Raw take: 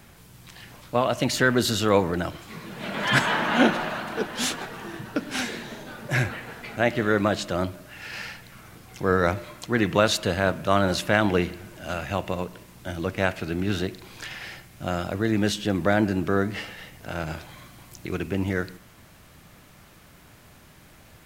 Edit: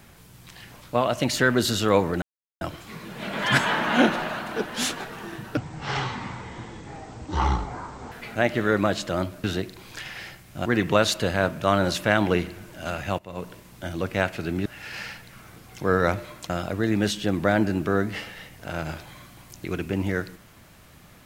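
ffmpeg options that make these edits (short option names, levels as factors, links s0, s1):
-filter_complex "[0:a]asplit=9[s0][s1][s2][s3][s4][s5][s6][s7][s8];[s0]atrim=end=2.22,asetpts=PTS-STARTPTS,afade=t=out:st=2.216:d=0.004:c=hsin,apad=pad_dur=0.39[s9];[s1]atrim=start=2.22:end=5.184,asetpts=PTS-STARTPTS,afade=t=in:d=0.004:c=hsin[s10];[s2]atrim=start=5.18:end=6.53,asetpts=PTS-STARTPTS,asetrate=23373,aresample=44100,atrim=end_sample=112330,asetpts=PTS-STARTPTS[s11];[s3]atrim=start=6.526:end=7.852[s12];[s4]atrim=start=13.688:end=14.912[s13];[s5]atrim=start=9.688:end=12.22,asetpts=PTS-STARTPTS,afade=t=out:st=2.528:d=0.004:c=hsin:silence=0.141254[s14];[s6]atrim=start=12.22:end=13.692,asetpts=PTS-STARTPTS,afade=t=in:d=0.25:c=qua:silence=0.141254[s15];[s7]atrim=start=7.848:end=9.692[s16];[s8]atrim=start=14.908[s17];[s9][s10]concat=n=2:v=0:a=1[s18];[s18][s11]acrossfade=d=0.004:c1=hsin:c2=hsin[s19];[s19][s12]acrossfade=d=0.004:c1=hsin:c2=hsin[s20];[s20][s13]acrossfade=d=0.004:c1=hsin:c2=hsin[s21];[s14][s15]concat=n=2:v=0:a=1[s22];[s21][s22]acrossfade=d=0.004:c1=hsin:c2=hsin[s23];[s23][s16]acrossfade=d=0.004:c1=hsin:c2=hsin[s24];[s24][s17]acrossfade=d=0.004:c1=hsin:c2=hsin"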